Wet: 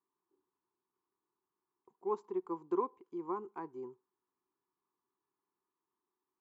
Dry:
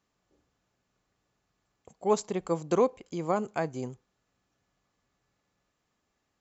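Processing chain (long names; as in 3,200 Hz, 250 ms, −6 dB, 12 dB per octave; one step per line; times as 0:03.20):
pair of resonant band-passes 600 Hz, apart 1.4 octaves
level −1.5 dB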